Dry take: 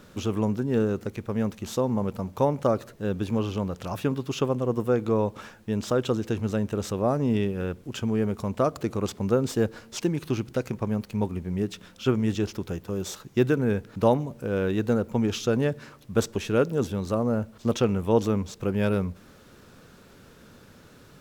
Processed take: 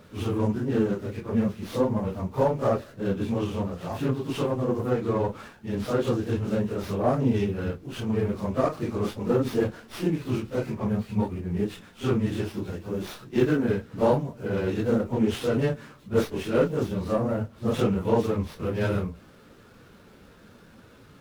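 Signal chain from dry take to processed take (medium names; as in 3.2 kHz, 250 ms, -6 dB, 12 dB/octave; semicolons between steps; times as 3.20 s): phase randomisation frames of 100 ms; sliding maximum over 5 samples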